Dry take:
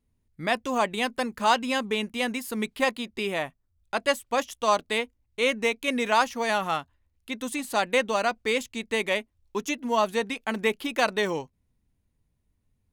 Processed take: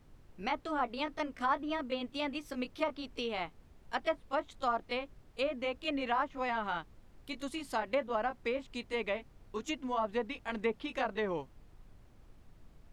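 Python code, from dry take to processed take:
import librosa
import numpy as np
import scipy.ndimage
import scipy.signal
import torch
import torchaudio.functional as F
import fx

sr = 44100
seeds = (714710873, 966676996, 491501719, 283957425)

y = fx.pitch_glide(x, sr, semitones=3.5, runs='ending unshifted')
y = fx.env_lowpass_down(y, sr, base_hz=1300.0, full_db=-21.0)
y = fx.dmg_noise_colour(y, sr, seeds[0], colour='brown', level_db=-49.0)
y = y * librosa.db_to_amplitude(-6.5)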